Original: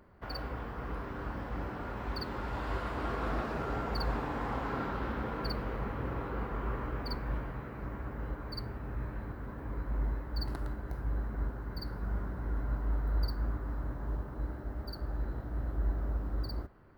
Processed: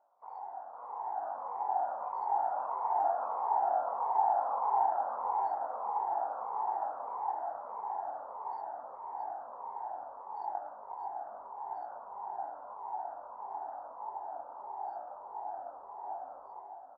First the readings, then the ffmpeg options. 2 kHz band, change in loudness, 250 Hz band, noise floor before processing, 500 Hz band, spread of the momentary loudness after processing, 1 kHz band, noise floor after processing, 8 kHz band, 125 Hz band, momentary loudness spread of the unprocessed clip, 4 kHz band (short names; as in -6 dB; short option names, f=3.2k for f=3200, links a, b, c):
under -10 dB, +1.5 dB, under -20 dB, -43 dBFS, 0.0 dB, 14 LU, +10.5 dB, -49 dBFS, n/a, under -40 dB, 6 LU, under -35 dB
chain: -af "afftfilt=real='re*pow(10,11/40*sin(2*PI*(0.83*log(max(b,1)*sr/1024/100)/log(2)-(-1.6)*(pts-256)/sr)))':imag='im*pow(10,11/40*sin(2*PI*(0.83*log(max(b,1)*sr/1024/100)/log(2)-(-1.6)*(pts-256)/sr)))':win_size=1024:overlap=0.75,dynaudnorm=f=680:g=3:m=11.5dB,flanger=delay=18.5:depth=4.6:speed=0.92,acompressor=threshold=-28dB:ratio=1.5,asuperpass=centerf=810:order=4:qfactor=3.8,aecho=1:1:614|1228|1842|2456|3070|3684|4298:0.355|0.202|0.115|0.0657|0.0375|0.0213|0.0122,volume=7dB" -ar 16000 -c:a wmav2 -b:a 32k